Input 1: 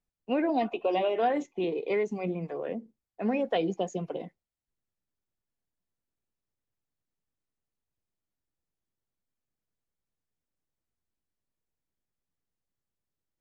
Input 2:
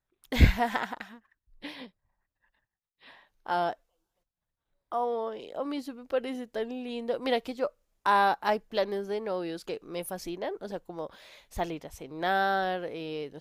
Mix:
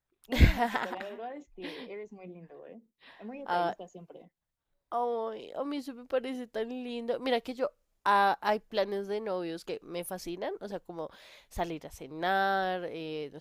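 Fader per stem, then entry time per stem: −14.5, −1.5 decibels; 0.00, 0.00 seconds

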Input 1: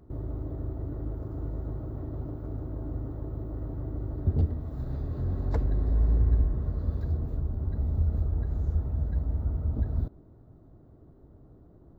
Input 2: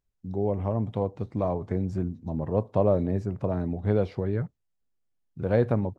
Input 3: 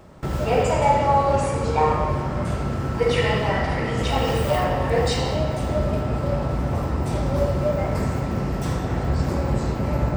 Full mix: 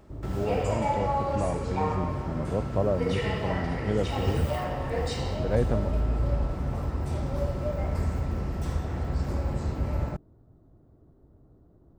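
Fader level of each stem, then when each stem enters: −3.5, −3.5, −9.5 decibels; 0.00, 0.00, 0.00 seconds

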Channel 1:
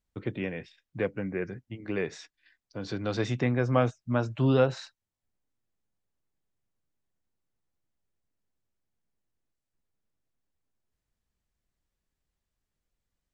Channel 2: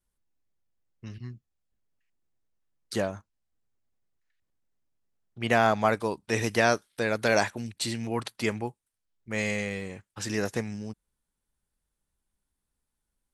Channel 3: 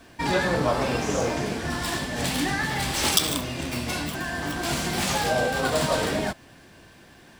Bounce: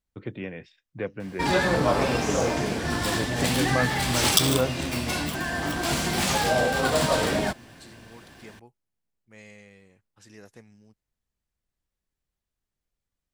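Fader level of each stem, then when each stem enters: −2.0, −19.0, +1.0 decibels; 0.00, 0.00, 1.20 seconds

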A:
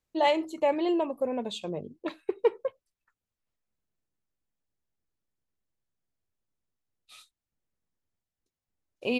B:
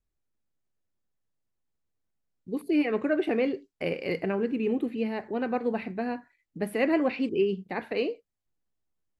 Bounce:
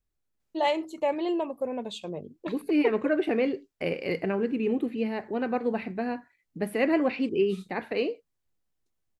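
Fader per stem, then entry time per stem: −1.5, +0.5 decibels; 0.40, 0.00 seconds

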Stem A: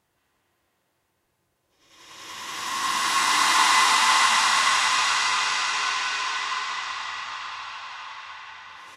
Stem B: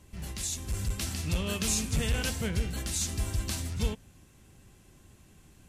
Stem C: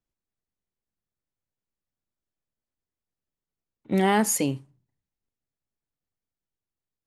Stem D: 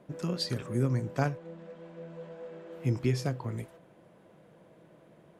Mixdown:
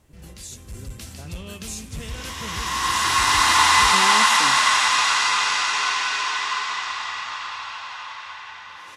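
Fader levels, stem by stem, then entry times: +3.0, −4.5, −10.5, −16.5 decibels; 0.00, 0.00, 0.00, 0.00 seconds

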